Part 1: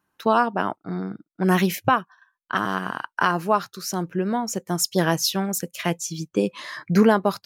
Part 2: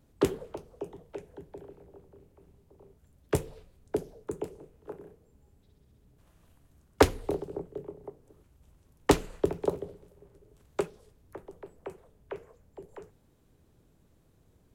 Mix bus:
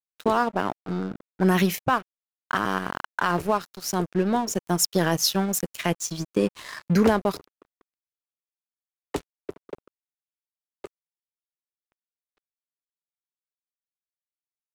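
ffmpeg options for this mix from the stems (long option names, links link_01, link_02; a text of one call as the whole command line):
ffmpeg -i stem1.wav -i stem2.wav -filter_complex "[0:a]adynamicequalizer=threshold=0.0251:dfrequency=1200:dqfactor=0.76:tfrequency=1200:tqfactor=0.76:attack=5:release=100:ratio=0.375:range=3.5:mode=cutabove:tftype=bell,alimiter=limit=-12.5dB:level=0:latency=1:release=61,volume=2.5dB[link_01];[1:a]adelay=50,volume=-6.5dB[link_02];[link_01][link_02]amix=inputs=2:normalize=0,aeval=exprs='sgn(val(0))*max(abs(val(0))-0.0168,0)':channel_layout=same" out.wav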